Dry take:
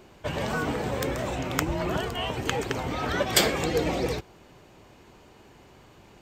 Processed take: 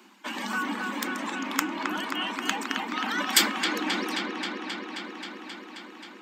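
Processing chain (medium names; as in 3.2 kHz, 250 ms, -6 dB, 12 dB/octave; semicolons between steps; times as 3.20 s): reverb removal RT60 1.9 s; steep high-pass 200 Hz 96 dB/octave; high-order bell 520 Hz -15 dB 1.1 oct; in parallel at -11 dB: saturation -13 dBFS, distortion -16 dB; on the sum: feedback echo behind a low-pass 266 ms, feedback 79%, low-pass 3.4 kHz, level -4 dB; on a send at -14 dB: reverberation RT60 0.70 s, pre-delay 3 ms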